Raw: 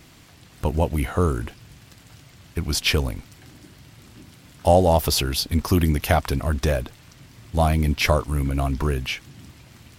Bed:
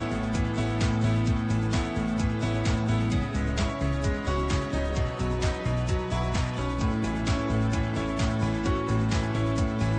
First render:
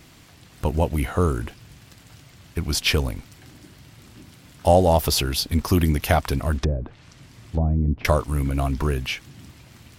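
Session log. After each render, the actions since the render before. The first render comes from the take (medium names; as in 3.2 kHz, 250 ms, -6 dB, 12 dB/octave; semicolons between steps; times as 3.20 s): 6.57–8.05 s: low-pass that closes with the level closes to 350 Hz, closed at -17.5 dBFS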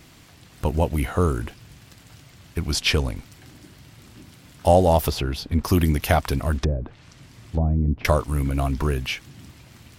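2.72–3.16 s: low-pass 10 kHz; 5.10–5.64 s: low-pass 1.7 kHz 6 dB/octave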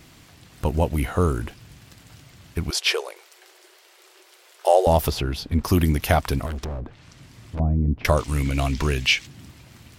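2.70–4.87 s: brick-wall FIR high-pass 340 Hz; 6.46–7.60 s: overload inside the chain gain 27.5 dB; 8.17–9.27 s: high-order bell 3.9 kHz +9.5 dB 2.3 oct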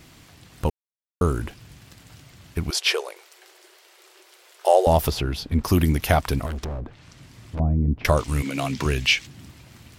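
0.70–1.21 s: mute; 8.41–8.84 s: high-pass 230 Hz -> 91 Hz 24 dB/octave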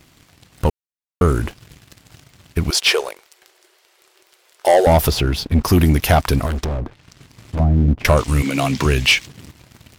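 waveshaping leveller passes 2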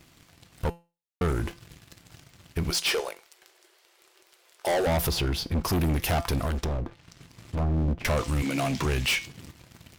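feedback comb 170 Hz, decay 0.29 s, harmonics all, mix 50%; saturation -22 dBFS, distortion -10 dB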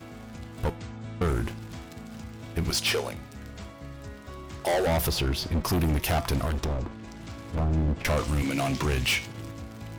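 add bed -14.5 dB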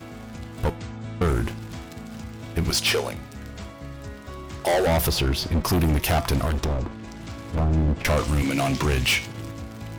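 trim +4 dB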